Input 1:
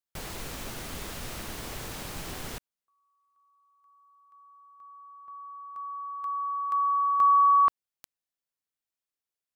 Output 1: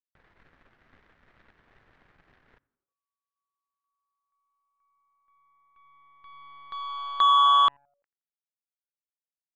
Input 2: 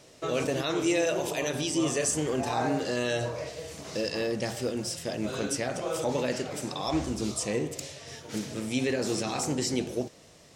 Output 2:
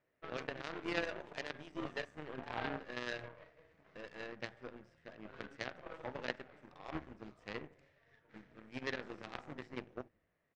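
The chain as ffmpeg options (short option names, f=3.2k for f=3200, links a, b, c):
-filter_complex "[0:a]lowpass=f=1.8k:t=q:w=2.7,asplit=5[a][b][c][d][e];[b]adelay=85,afreqshift=-140,volume=-20.5dB[f];[c]adelay=170,afreqshift=-280,volume=-25.7dB[g];[d]adelay=255,afreqshift=-420,volume=-30.9dB[h];[e]adelay=340,afreqshift=-560,volume=-36.1dB[i];[a][f][g][h][i]amix=inputs=5:normalize=0,aeval=exprs='0.266*(cos(1*acos(clip(val(0)/0.266,-1,1)))-cos(1*PI/2))+0.00266*(cos(2*acos(clip(val(0)/0.266,-1,1)))-cos(2*PI/2))+0.0841*(cos(3*acos(clip(val(0)/0.266,-1,1)))-cos(3*PI/2))+0.00168*(cos(4*acos(clip(val(0)/0.266,-1,1)))-cos(4*PI/2))+0.00237*(cos(8*acos(clip(val(0)/0.266,-1,1)))-cos(8*PI/2))':c=same,volume=-1.5dB"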